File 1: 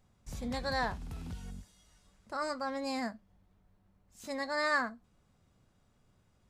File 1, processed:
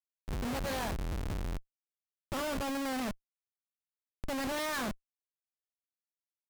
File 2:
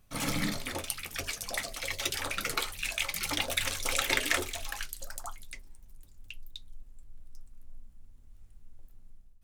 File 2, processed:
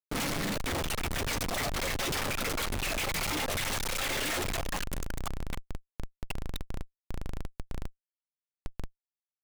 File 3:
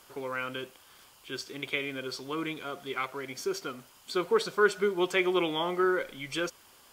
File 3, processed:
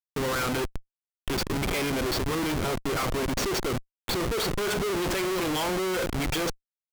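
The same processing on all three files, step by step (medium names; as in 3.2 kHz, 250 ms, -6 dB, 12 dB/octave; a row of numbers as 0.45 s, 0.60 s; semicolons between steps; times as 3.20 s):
Schroeder reverb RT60 0.36 s, combs from 26 ms, DRR 17.5 dB; Schmitt trigger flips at -39.5 dBFS; wow and flutter 28 cents; trim +4.5 dB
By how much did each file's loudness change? -0.5 LU, -0.5 LU, +3.0 LU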